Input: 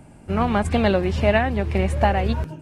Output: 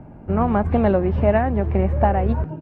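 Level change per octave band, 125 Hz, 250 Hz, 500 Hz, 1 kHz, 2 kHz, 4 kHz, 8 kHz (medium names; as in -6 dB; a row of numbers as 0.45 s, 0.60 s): +2.0 dB, +2.0 dB, +1.5 dB, +1.0 dB, -6.0 dB, under -10 dB, under -30 dB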